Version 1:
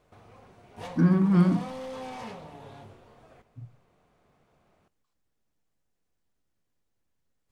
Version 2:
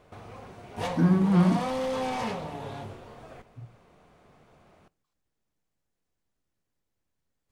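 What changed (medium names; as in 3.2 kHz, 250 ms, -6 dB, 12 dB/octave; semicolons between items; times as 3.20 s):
speech: send -11.5 dB; background +8.5 dB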